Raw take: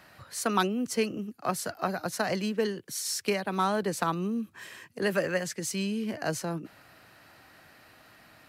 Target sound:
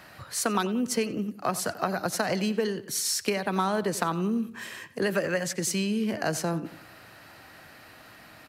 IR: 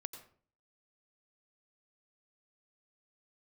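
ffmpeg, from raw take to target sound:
-filter_complex "[0:a]acompressor=threshold=-29dB:ratio=4,asplit=2[link_01][link_02];[link_02]adelay=90,lowpass=frequency=4000:poles=1,volume=-15.5dB,asplit=2[link_03][link_04];[link_04]adelay=90,lowpass=frequency=4000:poles=1,volume=0.43,asplit=2[link_05][link_06];[link_06]adelay=90,lowpass=frequency=4000:poles=1,volume=0.43,asplit=2[link_07][link_08];[link_08]adelay=90,lowpass=frequency=4000:poles=1,volume=0.43[link_09];[link_03][link_05][link_07][link_09]amix=inputs=4:normalize=0[link_10];[link_01][link_10]amix=inputs=2:normalize=0,volume=5.5dB"

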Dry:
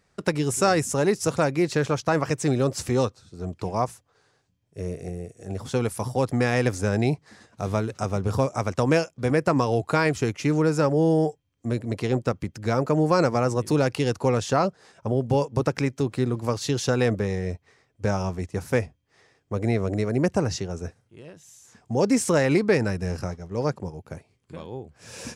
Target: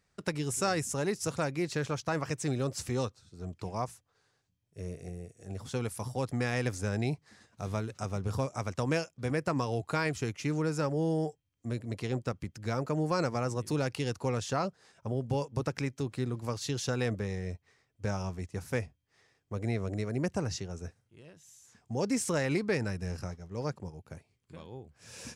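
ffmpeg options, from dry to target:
ffmpeg -i in.wav -af "equalizer=frequency=490:width=0.4:gain=-4.5,volume=-6dB" out.wav

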